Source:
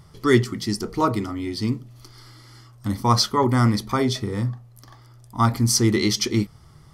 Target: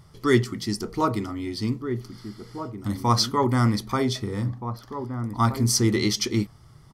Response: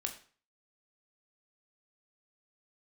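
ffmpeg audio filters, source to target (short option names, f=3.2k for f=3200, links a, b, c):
-filter_complex "[0:a]asplit=2[a][b];[b]adelay=1574,volume=-9dB,highshelf=f=4k:g=-35.4[c];[a][c]amix=inputs=2:normalize=0,volume=-2.5dB"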